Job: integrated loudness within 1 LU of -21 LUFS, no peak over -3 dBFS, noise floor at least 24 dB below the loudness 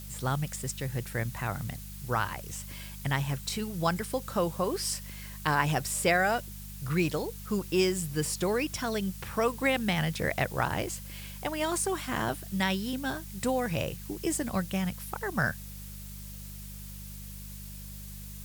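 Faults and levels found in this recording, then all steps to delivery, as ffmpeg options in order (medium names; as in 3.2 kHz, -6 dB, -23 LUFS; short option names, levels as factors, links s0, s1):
hum 50 Hz; highest harmonic 200 Hz; hum level -41 dBFS; noise floor -43 dBFS; noise floor target -55 dBFS; loudness -31.0 LUFS; peak level -11.0 dBFS; loudness target -21.0 LUFS
-> -af "bandreject=f=50:t=h:w=4,bandreject=f=100:t=h:w=4,bandreject=f=150:t=h:w=4,bandreject=f=200:t=h:w=4"
-af "afftdn=nr=12:nf=-43"
-af "volume=3.16,alimiter=limit=0.708:level=0:latency=1"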